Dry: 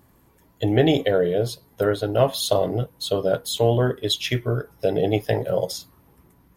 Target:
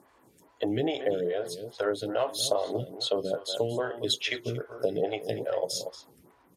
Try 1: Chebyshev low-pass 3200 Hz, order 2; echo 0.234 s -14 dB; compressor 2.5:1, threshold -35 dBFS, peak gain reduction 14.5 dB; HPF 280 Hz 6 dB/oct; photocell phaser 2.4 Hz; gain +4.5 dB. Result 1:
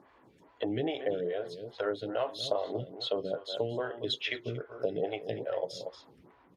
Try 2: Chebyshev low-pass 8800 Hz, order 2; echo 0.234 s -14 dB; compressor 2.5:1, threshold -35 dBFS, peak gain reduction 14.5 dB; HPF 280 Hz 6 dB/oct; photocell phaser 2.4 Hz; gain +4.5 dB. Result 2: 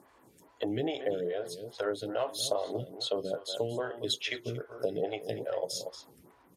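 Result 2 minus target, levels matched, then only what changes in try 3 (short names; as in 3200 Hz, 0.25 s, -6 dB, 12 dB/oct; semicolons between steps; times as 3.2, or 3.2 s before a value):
compressor: peak gain reduction +4 dB
change: compressor 2.5:1, threshold -28.5 dBFS, peak gain reduction 10.5 dB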